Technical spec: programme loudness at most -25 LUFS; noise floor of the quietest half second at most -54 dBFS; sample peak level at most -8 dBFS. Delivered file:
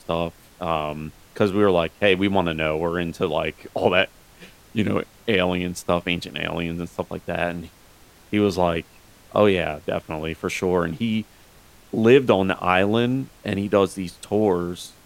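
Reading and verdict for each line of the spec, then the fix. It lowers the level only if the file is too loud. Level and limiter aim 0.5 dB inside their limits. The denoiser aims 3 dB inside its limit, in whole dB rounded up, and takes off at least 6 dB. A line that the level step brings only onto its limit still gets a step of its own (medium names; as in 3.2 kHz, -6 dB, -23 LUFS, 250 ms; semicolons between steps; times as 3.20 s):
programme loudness -22.5 LUFS: fail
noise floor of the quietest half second -51 dBFS: fail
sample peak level -3.5 dBFS: fail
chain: noise reduction 6 dB, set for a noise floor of -51 dBFS; trim -3 dB; peak limiter -8.5 dBFS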